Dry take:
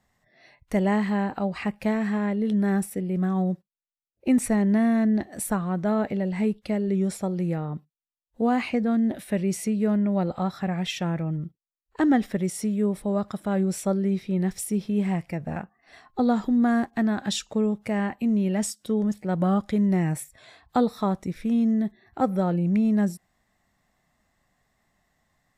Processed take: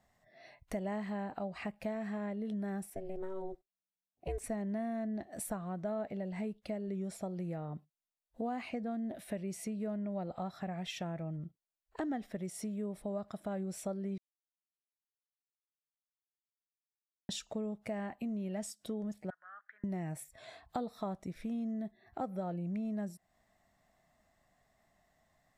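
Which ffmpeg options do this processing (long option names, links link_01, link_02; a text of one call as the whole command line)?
ffmpeg -i in.wav -filter_complex "[0:a]asettb=1/sr,asplit=3[link_01][link_02][link_03];[link_01]atrim=end=2.904[link_04];[link_02]atrim=start=2.9:end=4.44,asetpts=PTS-STARTPTS,afade=type=in:duration=0.004:curve=qsin,afade=type=out:start_time=1.536:duration=0.004:curve=qsin,aeval=exprs='val(0)*sin(2*PI*190*n/s)':channel_layout=same[link_05];[link_03]atrim=start=4.436[link_06];[link_04][link_05]acrossfade=duration=0.004:curve1=hsin:curve2=qsin[link_07];[link_07][link_06]acrossfade=duration=0.004:curve1=qsin:curve2=hsin,asettb=1/sr,asplit=3[link_08][link_09][link_10];[link_08]atrim=end=19.304[link_11];[link_09]atrim=start=19.3:end=19.84,asetpts=PTS-STARTPTS,afade=type=in:duration=0.004:curve=qsin,afade=type=out:start_time=0.536:duration=0.004:curve=qsin,asuperpass=centerf=1600:order=4:qfactor=4[link_12];[link_10]atrim=start=19.836[link_13];[link_11][link_12]acrossfade=duration=0.004:curve1=hsin:curve2=qsin[link_14];[link_14][link_13]acrossfade=duration=0.004:curve1=qsin:curve2=hsin,asplit=3[link_15][link_16][link_17];[link_15]atrim=end=14.18,asetpts=PTS-STARTPTS,afade=type=out:start_time=14.176:duration=0.004:curve=hsin[link_18];[link_16]atrim=start=14.18:end=17.29,asetpts=PTS-STARTPTS,volume=0[link_19];[link_17]atrim=start=17.29,asetpts=PTS-STARTPTS,afade=type=in:duration=0.004:curve=hsin[link_20];[link_18][link_19][link_20]concat=n=3:v=0:a=1,equalizer=frequency=660:width=4.3:gain=9,acompressor=threshold=-37dB:ratio=2.5,volume=-4dB" out.wav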